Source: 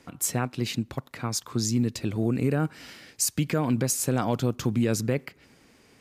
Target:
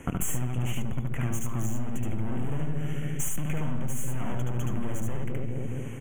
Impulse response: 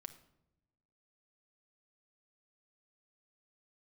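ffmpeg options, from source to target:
-filter_complex "[0:a]asplit=2[link_01][link_02];[link_02]adelay=210,lowpass=frequency=870:poles=1,volume=-12.5dB,asplit=2[link_03][link_04];[link_04]adelay=210,lowpass=frequency=870:poles=1,volume=0.5,asplit=2[link_05][link_06];[link_06]adelay=210,lowpass=frequency=870:poles=1,volume=0.5,asplit=2[link_07][link_08];[link_08]adelay=210,lowpass=frequency=870:poles=1,volume=0.5,asplit=2[link_09][link_10];[link_10]adelay=210,lowpass=frequency=870:poles=1,volume=0.5[link_11];[link_03][link_05][link_07][link_09][link_11]amix=inputs=5:normalize=0[link_12];[link_01][link_12]amix=inputs=2:normalize=0,aeval=exprs='0.237*(cos(1*acos(clip(val(0)/0.237,-1,1)))-cos(1*PI/2))+0.0188*(cos(5*acos(clip(val(0)/0.237,-1,1)))-cos(5*PI/2))+0.0473*(cos(8*acos(clip(val(0)/0.237,-1,1)))-cos(8*PI/2))':channel_layout=same,asoftclip=type=hard:threshold=-24dB,asuperstop=centerf=4500:order=12:qfactor=1.6,lowshelf=frequency=160:gain=11.5,asplit=2[link_13][link_14];[1:a]atrim=start_sample=2205,adelay=73[link_15];[link_14][link_15]afir=irnorm=-1:irlink=0,volume=3.5dB[link_16];[link_13][link_16]amix=inputs=2:normalize=0,acompressor=threshold=-30dB:ratio=6,volume=6dB"

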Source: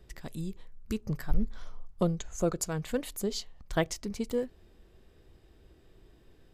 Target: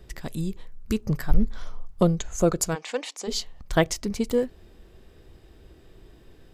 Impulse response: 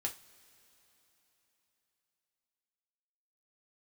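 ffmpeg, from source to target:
-filter_complex "[0:a]asplit=3[link_01][link_02][link_03];[link_01]afade=type=out:start_time=2.74:duration=0.02[link_04];[link_02]highpass=frequency=360:width=0.5412,highpass=frequency=360:width=1.3066,equalizer=frequency=390:width_type=q:width=4:gain=-9,equalizer=frequency=590:width_type=q:width=4:gain=-5,equalizer=frequency=840:width_type=q:width=4:gain=4,equalizer=frequency=1500:width_type=q:width=4:gain=-4,equalizer=frequency=2400:width_type=q:width=4:gain=4,equalizer=frequency=5700:width_type=q:width=4:gain=5,lowpass=frequency=7500:width=0.5412,lowpass=frequency=7500:width=1.3066,afade=type=in:start_time=2.74:duration=0.02,afade=type=out:start_time=3.27:duration=0.02[link_05];[link_03]afade=type=in:start_time=3.27:duration=0.02[link_06];[link_04][link_05][link_06]amix=inputs=3:normalize=0,volume=7.5dB"

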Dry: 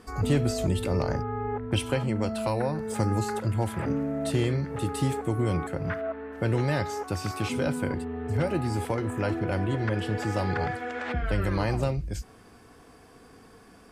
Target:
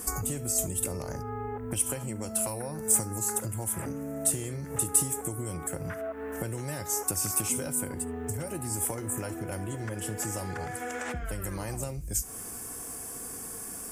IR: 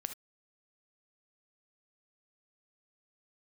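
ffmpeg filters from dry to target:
-filter_complex "[0:a]acompressor=threshold=-37dB:ratio=12,aexciter=amount=12.3:drive=6.2:freq=6300,asplit=2[link_01][link_02];[1:a]atrim=start_sample=2205[link_03];[link_02][link_03]afir=irnorm=-1:irlink=0,volume=-9dB[link_04];[link_01][link_04]amix=inputs=2:normalize=0,volume=3dB"

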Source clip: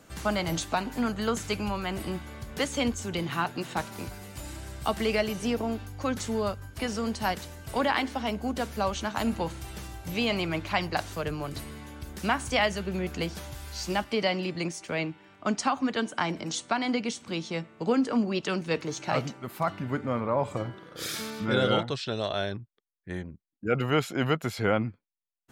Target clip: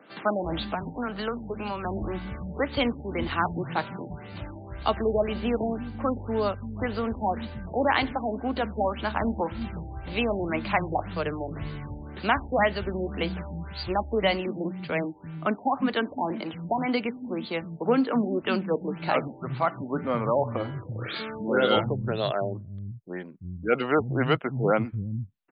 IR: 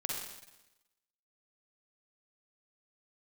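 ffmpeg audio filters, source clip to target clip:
-filter_complex "[0:a]acrossover=split=190[link_01][link_02];[link_01]adelay=340[link_03];[link_03][link_02]amix=inputs=2:normalize=0,asettb=1/sr,asplit=3[link_04][link_05][link_06];[link_04]atrim=end=0.624[link_07];[link_05]atrim=start=0.62:end=1.85,asetpts=PTS-STARTPTS,afade=type=in:duration=0.004:curve=qsin,afade=type=out:start_time=1.226:duration=0.004:curve=qsin,acrossover=split=170|340[link_08][link_09][link_10];[link_08]acompressor=threshold=-46dB:ratio=4[link_11];[link_09]acompressor=threshold=-41dB:ratio=4[link_12];[link_10]acompressor=threshold=-33dB:ratio=4[link_13];[link_11][link_12][link_13]amix=inputs=3:normalize=0[link_14];[link_06]atrim=start=1.846[link_15];[link_07][link_14]acrossfade=duration=0.004:curve1=hsin:curve2=qsin[link_16];[link_16][link_15]acrossfade=duration=0.004:curve1=qsin:curve2=hsin,afftfilt=real='re*lt(b*sr/1024,890*pow(4900/890,0.5+0.5*sin(2*PI*1.9*pts/sr)))':imag='im*lt(b*sr/1024,890*pow(4900/890,0.5+0.5*sin(2*PI*1.9*pts/sr)))':win_size=1024:overlap=0.75,volume=3.5dB"

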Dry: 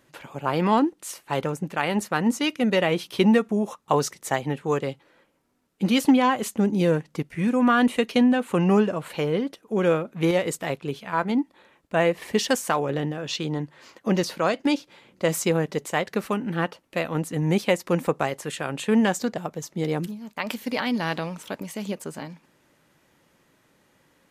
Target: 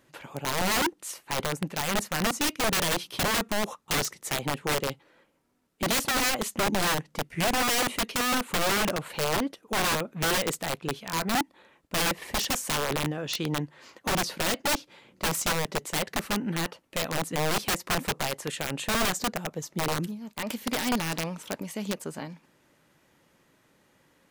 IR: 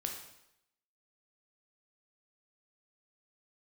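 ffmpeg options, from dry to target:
-af "aeval=exprs='(mod(8.91*val(0)+1,2)-1)/8.91':channel_layout=same,volume=-1.5dB"

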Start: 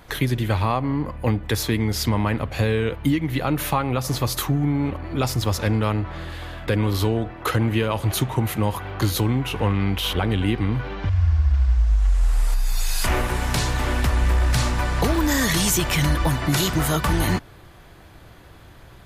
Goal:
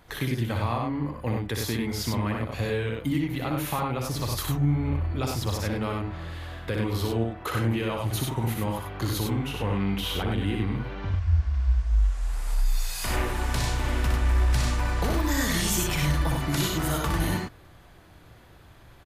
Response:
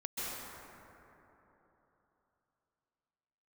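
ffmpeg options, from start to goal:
-filter_complex "[0:a]asettb=1/sr,asplit=3[link_01][link_02][link_03];[link_01]atrim=end=3.964[link_04];[link_02]atrim=start=3.96:end=5.12,asetpts=PTS-STARTPTS,afade=type=in:duration=0.004:curve=qsin,afade=type=out:start_time=1.156:duration=0.004:curve=qsin,asubboost=boost=8:cutoff=140[link_05];[link_03]atrim=start=5.116[link_06];[link_04][link_05]acrossfade=duration=0.004:curve1=hsin:curve2=qsin[link_07];[link_07][link_06]acrossfade=duration=0.004:curve1=qsin:curve2=hsin,asplit=2[link_08][link_09];[link_09]aecho=0:1:61.22|96.21:0.631|0.631[link_10];[link_08][link_10]amix=inputs=2:normalize=0,volume=-8dB"

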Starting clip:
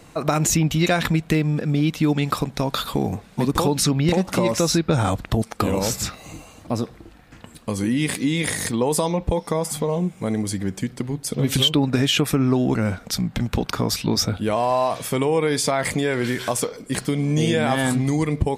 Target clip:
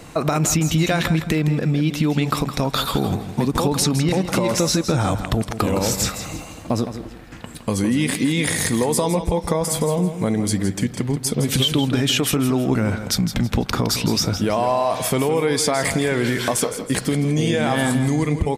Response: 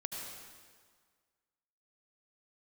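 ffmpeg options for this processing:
-filter_complex "[0:a]asettb=1/sr,asplit=3[link_01][link_02][link_03];[link_01]atrim=end=12.074[link_04];[link_02]atrim=start=12.07:end=12.7,asetpts=PTS-STARTPTS,afade=type=in:duration=0.004:curve=qsin,afade=type=out:start_time=0.626:duration=0.004:curve=qsin,bass=frequency=250:gain=-3,treble=frequency=4000:gain=4[link_05];[link_03]atrim=start=12.696[link_06];[link_04][link_05]acrossfade=duration=0.004:curve1=hsin:curve2=qsin[link_07];[link_07][link_06]acrossfade=duration=0.004:curve1=qsin:curve2=hsin,asplit=2[link_08][link_09];[link_09]alimiter=limit=-16dB:level=0:latency=1,volume=1dB[link_10];[link_08][link_10]amix=inputs=2:normalize=0,acompressor=threshold=-17dB:ratio=3,aecho=1:1:163|326|489:0.299|0.0925|0.0287"

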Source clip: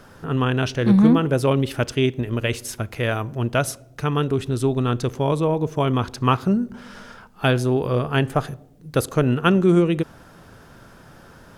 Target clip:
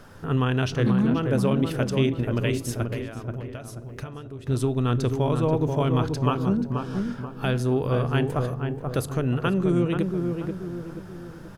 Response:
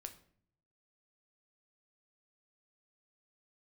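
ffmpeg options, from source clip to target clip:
-filter_complex "[0:a]alimiter=limit=-13dB:level=0:latency=1:release=378,asettb=1/sr,asplit=3[link_01][link_02][link_03];[link_01]atrim=end=2.834[link_04];[link_02]atrim=start=2.83:end=4.47,asetpts=PTS-STARTPTS,afade=type=in:duration=0.004:curve=qsin,afade=type=out:start_time=1.636:duration=0.004:curve=qsin,acompressor=threshold=-34dB:ratio=12[link_05];[link_03]atrim=start=4.466[link_06];[link_04][link_05]acrossfade=duration=0.004:curve1=hsin:curve2=qsin[link_07];[link_07][link_06]acrossfade=duration=0.004:curve1=qsin:curve2=hsin,asettb=1/sr,asplit=3[link_08][link_09][link_10];[link_08]atrim=end=6.264[link_11];[link_09]atrim=start=6.26:end=6.96,asetpts=PTS-STARTPTS,afade=type=in:duration=0.004:curve=qsin,afade=type=out:start_time=0.696:duration=0.004:curve=qsin,asuperstop=centerf=2000:order=4:qfactor=4.4[link_12];[link_10]atrim=start=6.956[link_13];[link_11][link_12]acrossfade=duration=0.004:curve1=hsin:curve2=qsin[link_14];[link_14][link_13]acrossfade=duration=0.004:curve1=qsin:curve2=hsin,asplit=2[link_15][link_16];[link_16]adelay=483,lowpass=frequency=1300:poles=1,volume=-4.5dB,asplit=2[link_17][link_18];[link_18]adelay=483,lowpass=frequency=1300:poles=1,volume=0.47,asplit=2[link_19][link_20];[link_20]adelay=483,lowpass=frequency=1300:poles=1,volume=0.47,asplit=2[link_21][link_22];[link_22]adelay=483,lowpass=frequency=1300:poles=1,volume=0.47,asplit=2[link_23][link_24];[link_24]adelay=483,lowpass=frequency=1300:poles=1,volume=0.47,asplit=2[link_25][link_26];[link_26]adelay=483,lowpass=frequency=1300:poles=1,volume=0.47[link_27];[link_15][link_17][link_19][link_21][link_23][link_25][link_27]amix=inputs=7:normalize=0,asplit=2[link_28][link_29];[1:a]atrim=start_sample=2205,lowshelf=frequency=200:gain=11[link_30];[link_29][link_30]afir=irnorm=-1:irlink=0,volume=-6.5dB[link_31];[link_28][link_31]amix=inputs=2:normalize=0,volume=-4dB"

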